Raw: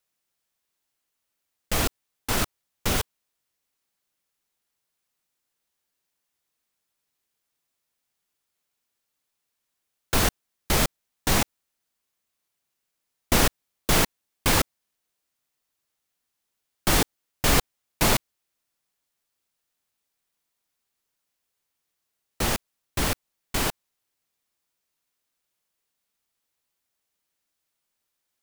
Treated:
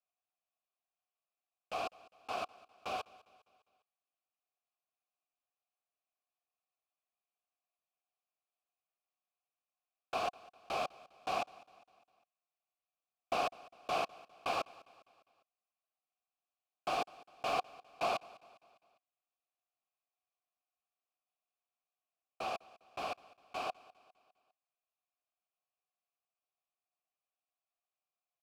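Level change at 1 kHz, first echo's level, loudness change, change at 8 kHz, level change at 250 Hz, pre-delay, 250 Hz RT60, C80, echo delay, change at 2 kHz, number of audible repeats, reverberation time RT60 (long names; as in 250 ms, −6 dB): −6.5 dB, −21.5 dB, −14.5 dB, −28.0 dB, −23.0 dB, no reverb audible, no reverb audible, no reverb audible, 202 ms, −15.5 dB, 3, no reverb audible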